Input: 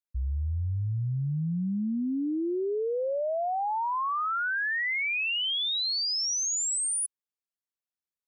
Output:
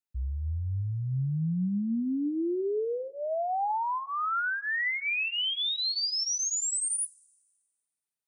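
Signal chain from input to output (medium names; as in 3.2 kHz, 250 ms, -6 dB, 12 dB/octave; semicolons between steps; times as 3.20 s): comb of notches 550 Hz; two-slope reverb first 0.25 s, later 1.6 s, from -18 dB, DRR 15.5 dB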